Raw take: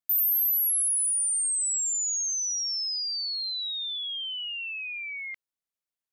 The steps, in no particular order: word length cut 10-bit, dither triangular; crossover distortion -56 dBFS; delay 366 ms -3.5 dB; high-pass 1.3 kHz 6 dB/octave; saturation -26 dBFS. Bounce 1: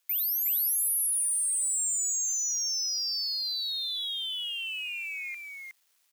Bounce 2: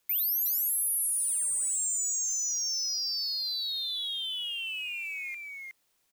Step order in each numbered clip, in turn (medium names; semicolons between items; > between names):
saturation > word length cut > delay > crossover distortion > high-pass; high-pass > word length cut > crossover distortion > delay > saturation